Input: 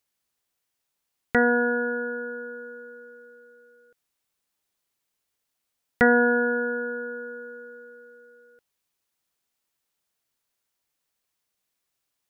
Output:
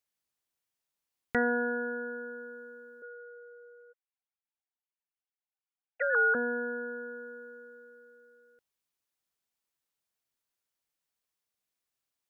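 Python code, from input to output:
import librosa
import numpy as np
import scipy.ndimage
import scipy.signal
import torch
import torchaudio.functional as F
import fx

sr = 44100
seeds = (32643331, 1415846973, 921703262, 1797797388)

y = fx.sine_speech(x, sr, at=(3.02, 6.35))
y = y * 10.0 ** (-7.5 / 20.0)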